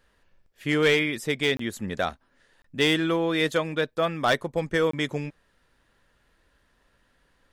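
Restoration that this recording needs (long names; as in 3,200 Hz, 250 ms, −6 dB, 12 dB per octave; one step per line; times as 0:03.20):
clipped peaks rebuilt −14 dBFS
repair the gap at 0:01.57/0:02.62/0:04.91, 24 ms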